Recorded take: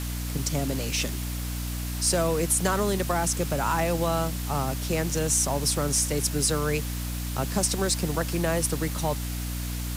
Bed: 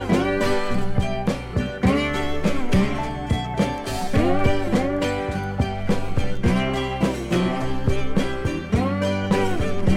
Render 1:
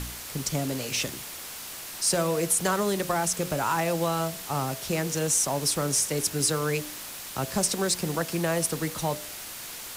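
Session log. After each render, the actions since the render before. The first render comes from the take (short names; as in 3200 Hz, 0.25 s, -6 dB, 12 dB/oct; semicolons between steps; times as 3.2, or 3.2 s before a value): de-hum 60 Hz, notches 11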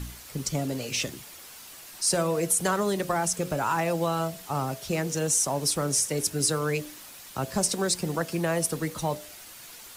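denoiser 8 dB, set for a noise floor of -39 dBFS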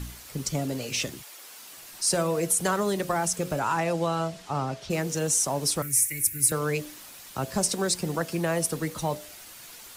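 1.22–1.75 HPF 580 Hz -> 150 Hz; 3.59–4.89 LPF 11000 Hz -> 5000 Hz; 5.82–6.52 EQ curve 130 Hz 0 dB, 200 Hz -22 dB, 320 Hz -8 dB, 460 Hz -23 dB, 920 Hz -27 dB, 2200 Hz +7 dB, 3100 Hz -11 dB, 5000 Hz -10 dB, 13000 Hz +13 dB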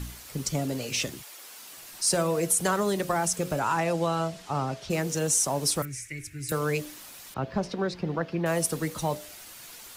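1.19–2.24 companded quantiser 8-bit; 5.85–6.49 air absorption 140 m; 7.34–8.46 air absorption 280 m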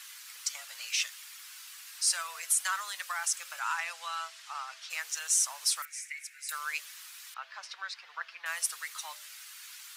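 inverse Chebyshev high-pass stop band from 280 Hz, stop band 70 dB; high shelf 10000 Hz -6 dB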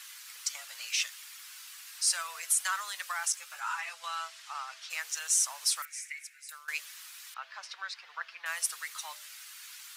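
3.32–4.04 ensemble effect; 6.1–6.68 fade out, to -19.5 dB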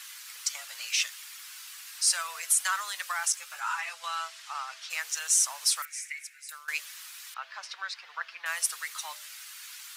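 gain +3 dB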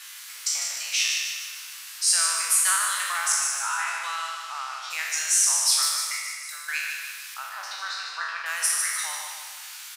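spectral trails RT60 1.12 s; on a send: feedback echo 0.151 s, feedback 52%, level -6 dB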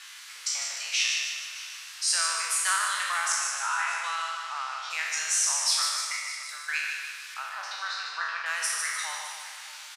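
air absorption 55 m; echo 0.614 s -17 dB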